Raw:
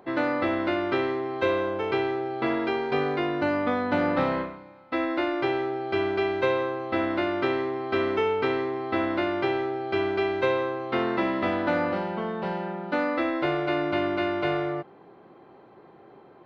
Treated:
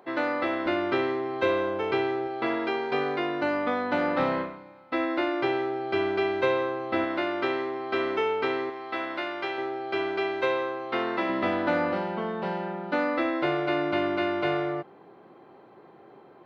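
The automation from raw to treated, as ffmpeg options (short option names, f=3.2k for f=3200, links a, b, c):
-af "asetnsamples=n=441:p=0,asendcmd='0.66 highpass f 110;2.27 highpass f 300;4.2 highpass f 130;7.04 highpass f 350;8.7 highpass f 1000;9.58 highpass f 410;11.29 highpass f 120',highpass=f=370:p=1"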